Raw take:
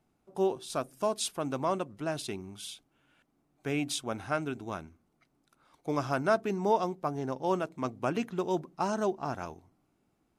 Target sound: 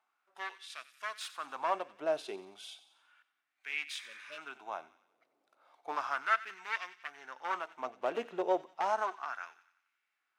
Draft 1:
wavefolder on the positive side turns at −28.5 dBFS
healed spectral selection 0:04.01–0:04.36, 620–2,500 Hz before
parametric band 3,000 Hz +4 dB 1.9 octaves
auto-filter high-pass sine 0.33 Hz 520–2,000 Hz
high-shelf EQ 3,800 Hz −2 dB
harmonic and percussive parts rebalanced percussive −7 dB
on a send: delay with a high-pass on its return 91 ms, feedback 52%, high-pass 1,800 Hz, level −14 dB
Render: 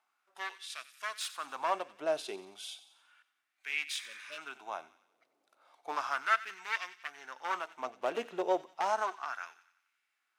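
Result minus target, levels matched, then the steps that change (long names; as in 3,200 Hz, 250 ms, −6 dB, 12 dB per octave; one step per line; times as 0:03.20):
8,000 Hz band +5.5 dB
change: high-shelf EQ 3,800 Hz −10 dB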